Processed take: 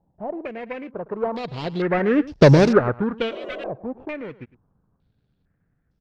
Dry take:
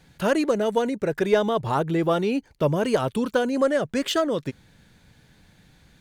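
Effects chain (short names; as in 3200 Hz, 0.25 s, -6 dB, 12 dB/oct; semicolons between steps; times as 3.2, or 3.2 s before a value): median filter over 41 samples; Doppler pass-by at 2.44, 26 m/s, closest 2.6 m; spectral repair 3.33–3.67, 200–1200 Hz after; on a send: echo 0.108 s -18.5 dB; on the sum: maximiser +19.5 dB; stepped low-pass 2.2 Hz 810–5300 Hz; gain -3 dB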